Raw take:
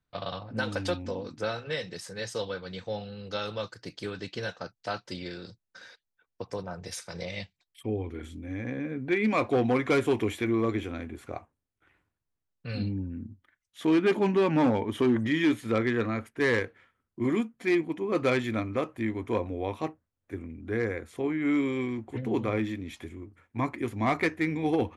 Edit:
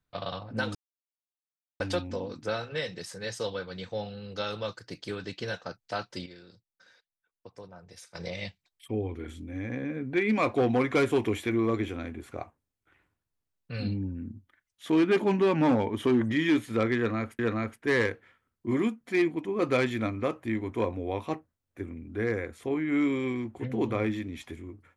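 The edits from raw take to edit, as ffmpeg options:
-filter_complex "[0:a]asplit=5[a][b][c][d][e];[a]atrim=end=0.75,asetpts=PTS-STARTPTS,afade=t=out:st=0.746:d=0.004:c=hsin,apad=pad_dur=1.05[f];[b]atrim=start=0.75:end=5.212,asetpts=PTS-STARTPTS,afade=t=in:d=0.004:c=hsin[g];[c]atrim=start=5.208:end=7.102,asetpts=PTS-STARTPTS,volume=-11dB[h];[d]atrim=start=7.098:end=16.342[i];[e]atrim=start=15.918[j];[f][g]concat=n=2:v=0:a=1[k];[k][h]acrossfade=d=0.004:c1=hsin:c2=hsin[l];[l][i]acrossfade=d=0.004:c1=hsin:c2=hsin[m];[m][j]acrossfade=d=0.004:c1=hsin:c2=hsin"

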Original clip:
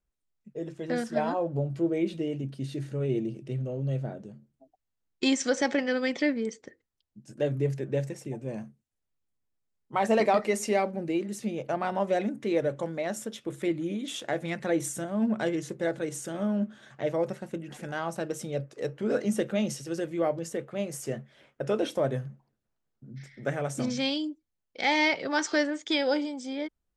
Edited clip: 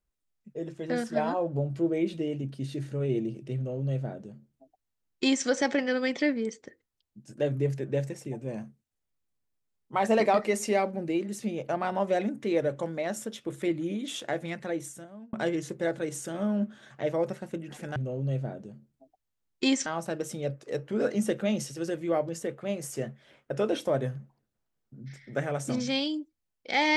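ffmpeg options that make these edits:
-filter_complex "[0:a]asplit=4[a][b][c][d];[a]atrim=end=15.33,asetpts=PTS-STARTPTS,afade=t=out:st=14.22:d=1.11[e];[b]atrim=start=15.33:end=17.962,asetpts=PTS-STARTPTS,afade=t=in:d=0.004:c=hsin[f];[c]atrim=start=3.558:end=5.462[g];[d]atrim=start=17.958[h];[e][f]concat=n=2:v=0:a=1[i];[i][g]acrossfade=d=0.004:c1=hsin:c2=hsin[j];[j][h]acrossfade=d=0.004:c1=hsin:c2=hsin"

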